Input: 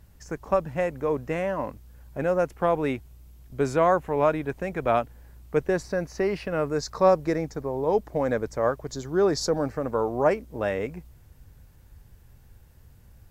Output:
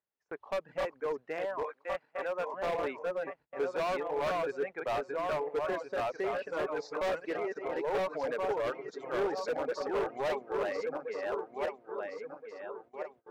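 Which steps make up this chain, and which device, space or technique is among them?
backward echo that repeats 686 ms, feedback 62%, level -2 dB; 1.63–2.54 s: frequency weighting A; reverb removal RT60 1 s; walkie-talkie (band-pass 480–2600 Hz; hard clipper -24.5 dBFS, distortion -8 dB; gate -50 dBFS, range -23 dB); peaking EQ 420 Hz +4 dB 0.21 oct; trim -4.5 dB

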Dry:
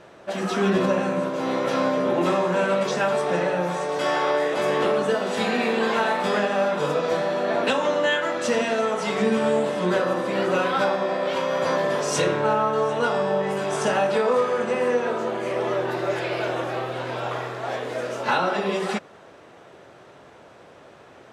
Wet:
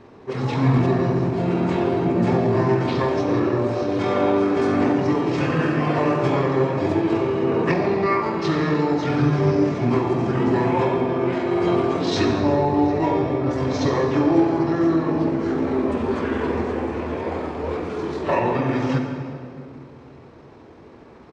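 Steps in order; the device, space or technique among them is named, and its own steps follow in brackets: monster voice (pitch shift -7 st; bass shelf 250 Hz +4 dB; reverberation RT60 2.4 s, pre-delay 42 ms, DRR 4 dB)

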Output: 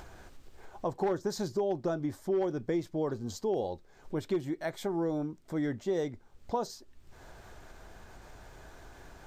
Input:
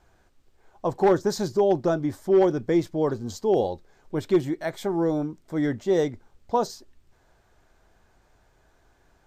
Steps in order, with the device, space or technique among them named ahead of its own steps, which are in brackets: upward and downward compression (upward compressor, threshold -31 dBFS; compression 3:1, threshold -24 dBFS, peak gain reduction 7.5 dB); trim -4.5 dB

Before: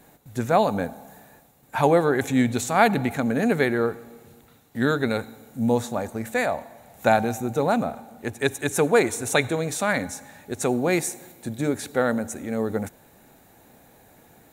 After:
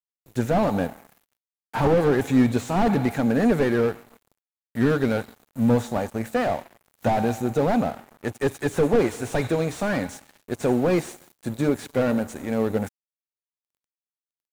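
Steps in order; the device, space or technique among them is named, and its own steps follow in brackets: early transistor amplifier (crossover distortion -42.5 dBFS; slew-rate limiter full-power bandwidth 51 Hz); trim +3.5 dB

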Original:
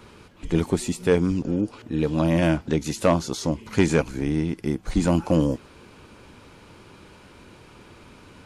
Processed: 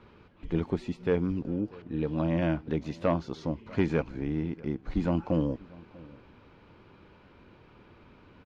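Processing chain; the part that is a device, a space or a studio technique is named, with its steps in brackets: shout across a valley (distance through air 260 m; echo from a far wall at 110 m, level -22 dB); trim -6.5 dB

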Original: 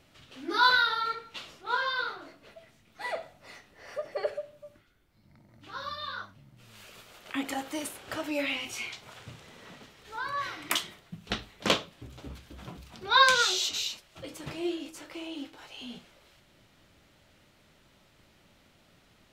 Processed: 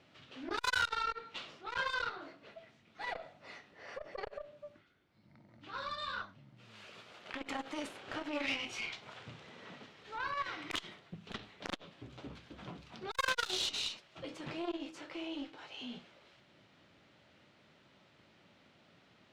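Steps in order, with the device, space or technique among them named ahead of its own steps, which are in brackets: valve radio (band-pass 120–4400 Hz; valve stage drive 25 dB, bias 0.55; transformer saturation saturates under 950 Hz); trim +1 dB

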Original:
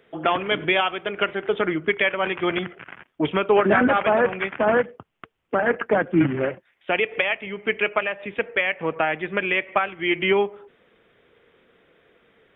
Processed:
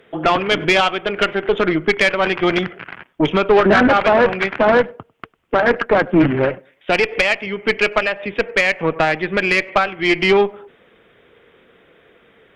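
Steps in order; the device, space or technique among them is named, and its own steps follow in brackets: rockabilly slapback (valve stage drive 15 dB, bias 0.45; tape echo 98 ms, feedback 29%, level -23 dB, low-pass 1.1 kHz); trim +9 dB

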